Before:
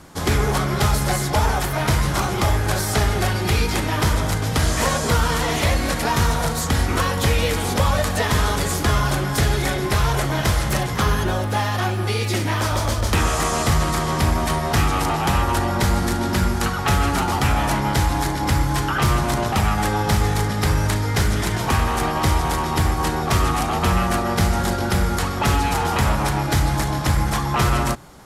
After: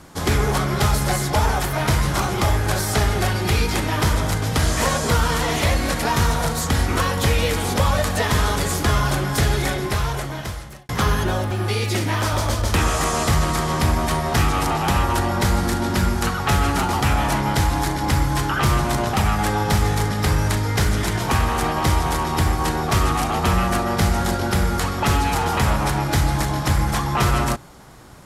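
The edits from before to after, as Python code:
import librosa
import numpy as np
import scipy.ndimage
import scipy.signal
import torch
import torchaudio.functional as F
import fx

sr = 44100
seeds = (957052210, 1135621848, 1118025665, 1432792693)

y = fx.edit(x, sr, fx.fade_out_span(start_s=9.61, length_s=1.28),
    fx.cut(start_s=11.51, length_s=0.39), tone=tone)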